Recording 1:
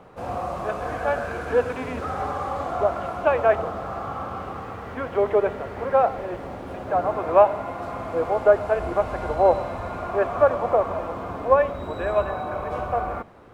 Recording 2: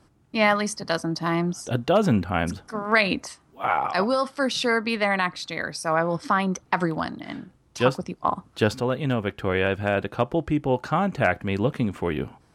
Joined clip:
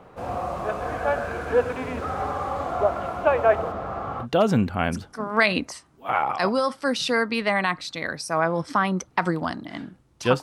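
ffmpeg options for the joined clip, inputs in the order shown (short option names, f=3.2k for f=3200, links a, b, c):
-filter_complex "[0:a]asettb=1/sr,asplit=3[a][b][c];[a]atrim=end=3.724[d];[b]atrim=start=3.72:end=4.27,asetpts=PTS-STARTPTS,afade=t=in:d=0.004:c=qsin,afade=t=out:st=0.546:d=0.004:c=qsin,aemphasis=mode=reproduction:type=cd[e];[c]atrim=start=4.266[f];[d][e]acrossfade=d=0.004:c1=hsin:c2=qsin[g];[g][f]acrossfade=d=0.004:c1=qsin:c2=hsin,apad=whole_dur=10.42,atrim=end=10.42,atrim=end=4.27,asetpts=PTS-STARTPTS[h];[1:a]atrim=start=1.74:end=7.97,asetpts=PTS-STARTPTS[i];[h][i]acrossfade=d=0.08:c1=tri:c2=tri"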